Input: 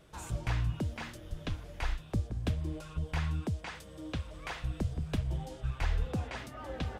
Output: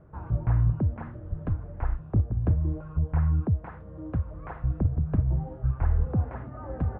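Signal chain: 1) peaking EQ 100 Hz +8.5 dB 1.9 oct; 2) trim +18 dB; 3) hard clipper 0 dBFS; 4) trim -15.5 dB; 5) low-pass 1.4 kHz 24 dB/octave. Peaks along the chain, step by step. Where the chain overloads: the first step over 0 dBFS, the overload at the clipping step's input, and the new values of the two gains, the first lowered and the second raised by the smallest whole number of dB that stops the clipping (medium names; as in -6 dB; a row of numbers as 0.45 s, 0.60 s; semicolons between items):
-14.5 dBFS, +3.5 dBFS, 0.0 dBFS, -15.5 dBFS, -15.0 dBFS; step 2, 3.5 dB; step 2 +14 dB, step 4 -11.5 dB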